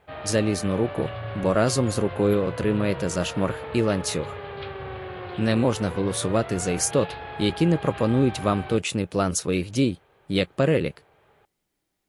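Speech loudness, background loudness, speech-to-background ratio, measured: −24.5 LKFS, −36.0 LKFS, 11.5 dB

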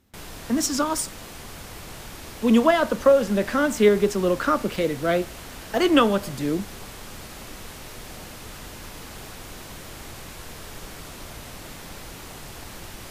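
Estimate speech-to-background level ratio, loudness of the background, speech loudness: 17.0 dB, −39.0 LKFS, −22.0 LKFS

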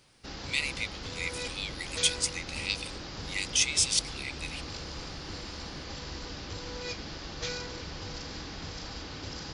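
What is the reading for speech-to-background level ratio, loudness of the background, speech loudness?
8.5 dB, −39.0 LKFS, −30.5 LKFS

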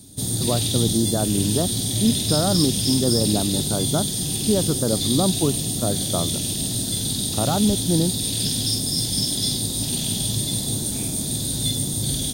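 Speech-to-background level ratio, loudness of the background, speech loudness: −2.0 dB, −22.0 LKFS, −24.0 LKFS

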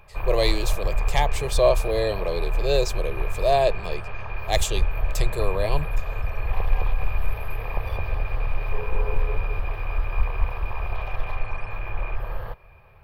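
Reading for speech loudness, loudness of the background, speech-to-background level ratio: −25.5 LKFS, −30.0 LKFS, 4.5 dB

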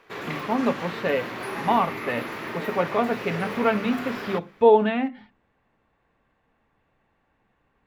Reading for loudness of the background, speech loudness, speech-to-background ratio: −33.0 LKFS, −24.5 LKFS, 8.5 dB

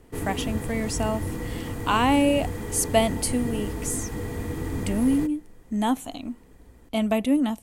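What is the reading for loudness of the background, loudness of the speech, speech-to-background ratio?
−32.0 LKFS, −25.5 LKFS, 6.5 dB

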